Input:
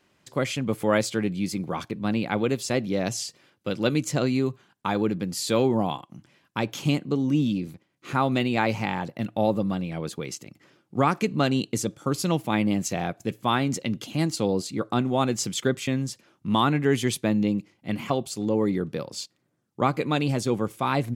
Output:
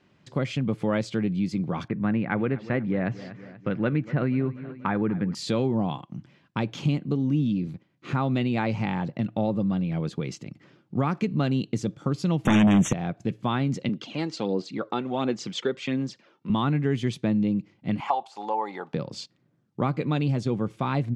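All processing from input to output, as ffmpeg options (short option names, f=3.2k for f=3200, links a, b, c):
-filter_complex "[0:a]asettb=1/sr,asplit=3[a][b][c];[a]atrim=end=1.884[d];[b]atrim=start=1.88:end=5.35,asetpts=PTS-STARTPTS,afade=t=in:d=0.004:c=qsin,afade=t=out:st=3.466:d=0.004:c=qsin,lowpass=f=1.8k:t=q:w=2.4,aecho=1:1:241|482|723|964:0.112|0.0595|0.0315|0.0167,atrim=end_sample=153027[e];[c]atrim=start=5.346[f];[d][e]acrossfade=d=0.004:c1=hsin:c2=qsin[g];[g][f]acrossfade=d=0.004:c1=qsin:c2=hsin,asettb=1/sr,asplit=3[h][i][j];[h]atrim=end=12.454[k];[i]atrim=start=12.45:end=12.93,asetpts=PTS-STARTPTS,afade=t=in:d=0.004:c=qsin,afade=t=out:st=0.476:d=0.004:c=qsin,bass=f=250:g=-2,treble=f=4k:g=6,aeval=exprs='0.398*sin(PI/2*5.62*val(0)/0.398)':c=same,asuperstop=centerf=4600:order=20:qfactor=2.4[l];[j]atrim=start=12.926[m];[k][l]acrossfade=d=0.004:c1=hsin:c2=qsin[n];[n][m]acrossfade=d=0.004:c1=qsin:c2=hsin,asettb=1/sr,asplit=3[o][p][q];[o]atrim=end=13.894[r];[p]atrim=start=13.89:end=16.5,asetpts=PTS-STARTPTS,afade=t=in:d=0.004:c=qsin,afade=t=out:st=2.606:d=0.004:c=qsin,aphaser=in_gain=1:out_gain=1:delay=2.3:decay=0.46:speed=1.4:type=sinusoidal,highpass=310,lowpass=6.2k[s];[q]atrim=start=16.496[t];[r][s]acrossfade=d=0.004:c1=hsin:c2=qsin[u];[u][t]acrossfade=d=0.004:c1=qsin:c2=hsin,asettb=1/sr,asplit=3[v][w][x];[v]atrim=end=18.004[y];[w]atrim=start=18:end=18.94,asetpts=PTS-STARTPTS,afade=t=in:d=0.004:c=qsin,afade=t=out:st=0.936:d=0.004:c=qsin,deesser=0.95,highpass=f=830:t=q:w=10[z];[x]atrim=start=18.936[aa];[y][z]acrossfade=d=0.004:c1=hsin:c2=qsin[ab];[ab][aa]acrossfade=d=0.004:c1=qsin:c2=hsin,lowpass=4.7k,equalizer=f=150:t=o:w=1.8:g=8.5,acompressor=threshold=-26dB:ratio=2"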